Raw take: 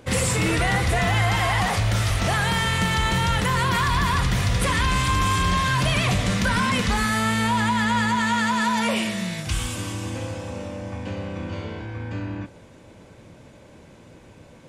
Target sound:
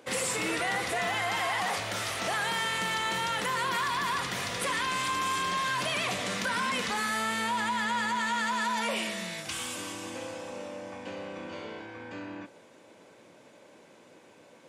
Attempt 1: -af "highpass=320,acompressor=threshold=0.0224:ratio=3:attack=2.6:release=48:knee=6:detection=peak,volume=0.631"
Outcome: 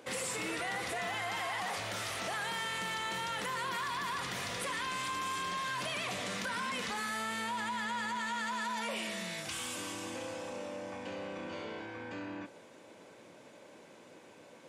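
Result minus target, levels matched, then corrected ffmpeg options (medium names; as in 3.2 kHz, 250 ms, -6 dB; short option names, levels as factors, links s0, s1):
compression: peak gain reduction +7 dB
-af "highpass=320,acompressor=threshold=0.0794:ratio=3:attack=2.6:release=48:knee=6:detection=peak,volume=0.631"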